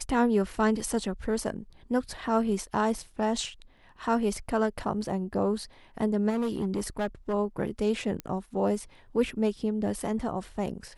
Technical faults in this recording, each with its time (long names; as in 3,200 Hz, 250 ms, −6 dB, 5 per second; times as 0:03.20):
0:06.29–0:07.34: clipping −24.5 dBFS
0:08.20: click −19 dBFS